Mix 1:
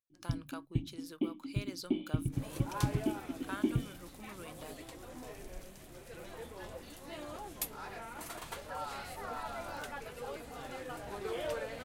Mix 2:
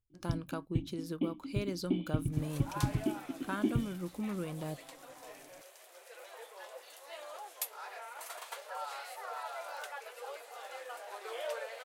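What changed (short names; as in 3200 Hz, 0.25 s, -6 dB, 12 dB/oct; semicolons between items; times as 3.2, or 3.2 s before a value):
speech: remove HPF 1300 Hz 6 dB/oct; second sound: add steep high-pass 490 Hz 36 dB/oct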